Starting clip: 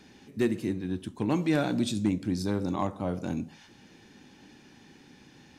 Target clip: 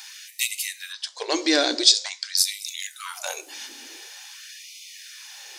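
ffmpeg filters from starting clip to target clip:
-filter_complex "[0:a]asplit=3[a][b][c];[a]afade=t=out:st=0.92:d=0.02[d];[b]highpass=140,equalizer=f=260:t=q:w=4:g=-10,equalizer=f=880:t=q:w=4:g=-6,equalizer=f=1.3k:t=q:w=4:g=-6,equalizer=f=2.6k:t=q:w=4:g=-8,equalizer=f=4.8k:t=q:w=4:g=10,lowpass=f=6.3k:w=0.5412,lowpass=f=6.3k:w=1.3066,afade=t=in:st=0.92:d=0.02,afade=t=out:st=2.36:d=0.02[e];[c]afade=t=in:st=2.36:d=0.02[f];[d][e][f]amix=inputs=3:normalize=0,crystalizer=i=7.5:c=0,afftfilt=real='re*gte(b*sr/1024,230*pow(2000/230,0.5+0.5*sin(2*PI*0.47*pts/sr)))':imag='im*gte(b*sr/1024,230*pow(2000/230,0.5+0.5*sin(2*PI*0.47*pts/sr)))':win_size=1024:overlap=0.75,volume=6dB"

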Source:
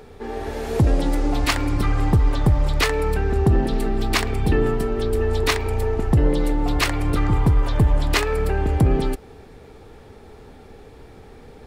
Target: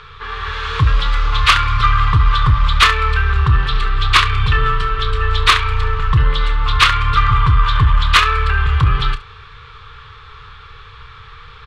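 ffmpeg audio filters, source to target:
-af "firequalizer=gain_entry='entry(130,0);entry(200,-22);entry(290,-28);entry(450,-11);entry(690,-23);entry(1100,15);entry(1900,5);entry(3400,12);entry(5000,-1);entry(12000,-29)':delay=0.05:min_phase=1,asoftclip=type=tanh:threshold=-8.5dB,aecho=1:1:30|70:0.266|0.15,volume=5.5dB"

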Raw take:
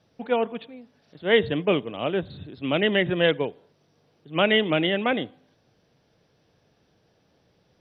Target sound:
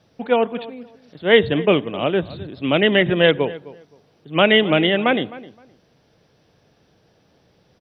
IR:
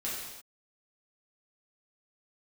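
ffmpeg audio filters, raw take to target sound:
-filter_complex "[0:a]asplit=2[a][b];[b]adelay=260,lowpass=f=1.8k:p=1,volume=-17.5dB,asplit=2[c][d];[d]adelay=260,lowpass=f=1.8k:p=1,volume=0.21[e];[a][c][e]amix=inputs=3:normalize=0,volume=6dB"

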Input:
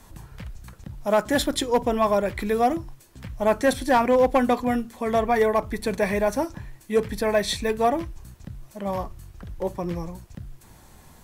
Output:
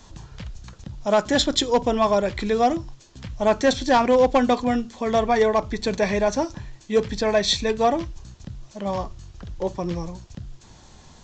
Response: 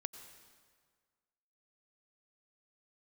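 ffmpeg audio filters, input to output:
-filter_complex "[0:a]aresample=16000,aresample=44100,asplit=2[a][b];[b]highshelf=f=2.1k:t=q:w=1.5:g=13[c];[1:a]atrim=start_sample=2205,atrim=end_sample=3969[d];[c][d]afir=irnorm=-1:irlink=0,volume=-10.5dB[e];[a][e]amix=inputs=2:normalize=0"

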